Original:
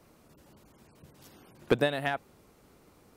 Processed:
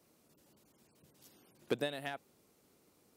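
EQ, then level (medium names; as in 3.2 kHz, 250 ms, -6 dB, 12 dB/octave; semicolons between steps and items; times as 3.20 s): high-pass 360 Hz 6 dB/octave; peaking EQ 1.2 kHz -9 dB 2.7 oct; -3.0 dB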